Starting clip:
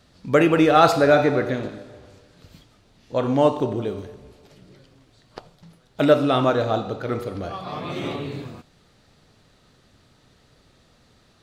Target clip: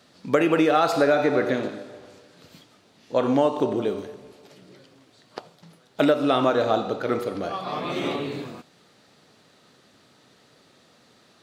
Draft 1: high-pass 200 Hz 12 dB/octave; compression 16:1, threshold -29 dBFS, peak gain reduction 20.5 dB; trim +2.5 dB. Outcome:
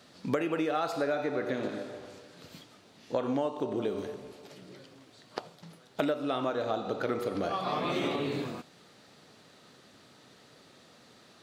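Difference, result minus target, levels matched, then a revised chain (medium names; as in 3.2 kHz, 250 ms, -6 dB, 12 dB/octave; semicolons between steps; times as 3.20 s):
compression: peak gain reduction +11 dB
high-pass 200 Hz 12 dB/octave; compression 16:1, threshold -17.5 dBFS, peak gain reduction 10 dB; trim +2.5 dB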